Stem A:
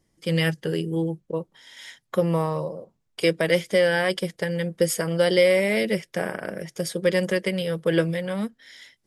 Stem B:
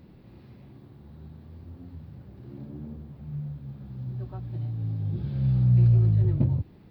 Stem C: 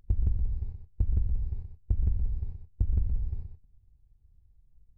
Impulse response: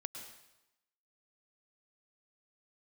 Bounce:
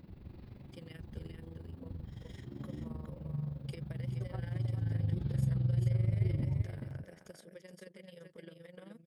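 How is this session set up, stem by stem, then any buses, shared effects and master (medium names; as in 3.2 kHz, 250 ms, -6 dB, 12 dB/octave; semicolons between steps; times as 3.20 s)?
-15.5 dB, 0.50 s, no send, echo send -5 dB, compression 10:1, threshold -31 dBFS, peak gain reduction 17 dB
-0.5 dB, 0.00 s, no send, echo send -10 dB, peak limiter -22.5 dBFS, peak gain reduction 10 dB
-7.5 dB, 0.00 s, no send, no echo send, band-pass filter 180 Hz, Q 1.8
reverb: none
echo: delay 417 ms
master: AM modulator 23 Hz, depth 55%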